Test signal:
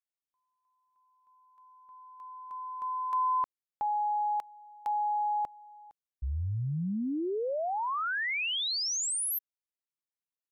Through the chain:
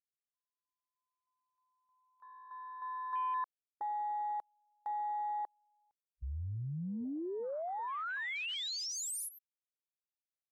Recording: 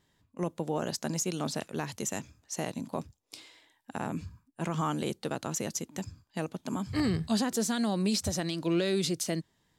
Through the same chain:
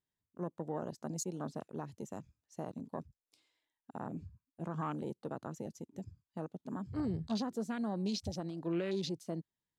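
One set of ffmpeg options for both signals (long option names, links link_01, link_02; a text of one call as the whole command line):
ffmpeg -i in.wav -af "afwtdn=0.0141,volume=-7dB" out.wav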